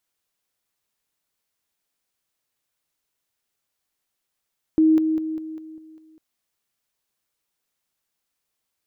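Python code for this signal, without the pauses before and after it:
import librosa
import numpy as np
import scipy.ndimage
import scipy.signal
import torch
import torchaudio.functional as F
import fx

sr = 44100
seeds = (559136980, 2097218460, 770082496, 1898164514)

y = fx.level_ladder(sr, hz=316.0, from_db=-12.5, step_db=-6.0, steps=7, dwell_s=0.2, gap_s=0.0)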